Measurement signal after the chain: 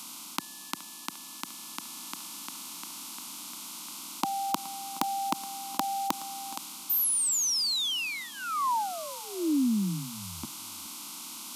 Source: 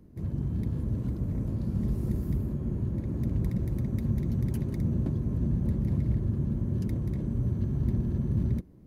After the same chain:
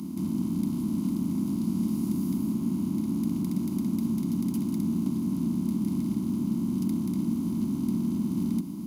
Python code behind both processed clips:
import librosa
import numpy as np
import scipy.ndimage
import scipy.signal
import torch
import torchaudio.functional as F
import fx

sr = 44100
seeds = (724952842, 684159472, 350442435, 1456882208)

p1 = fx.bin_compress(x, sr, power=0.4)
p2 = scipy.signal.sosfilt(scipy.signal.butter(4, 140.0, 'highpass', fs=sr, output='sos'), p1)
p3 = fx.band_shelf(p2, sr, hz=550.0, db=-13.5, octaves=1.2)
p4 = fx.rider(p3, sr, range_db=3, speed_s=0.5)
p5 = p3 + F.gain(torch.from_numpy(p4), 2.0).numpy()
p6 = fx.fixed_phaser(p5, sr, hz=470.0, stages=6)
p7 = 10.0 ** (-6.5 / 20.0) * np.tanh(p6 / 10.0 ** (-6.5 / 20.0))
p8 = fx.quant_companded(p7, sr, bits=8)
p9 = p8 + 10.0 ** (-18.0 / 20.0) * np.pad(p8, (int(421 * sr / 1000.0), 0))[:len(p8)]
y = F.gain(torch.from_numpy(p9), -2.5).numpy()